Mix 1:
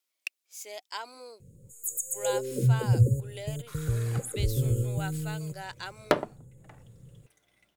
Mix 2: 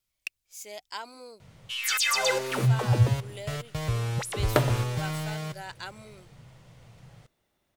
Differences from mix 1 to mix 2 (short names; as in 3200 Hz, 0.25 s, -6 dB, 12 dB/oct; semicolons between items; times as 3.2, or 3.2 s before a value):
speech: remove HPF 280 Hz 24 dB/oct; first sound: remove brick-wall FIR band-stop 570–6500 Hz; second sound: entry -1.55 s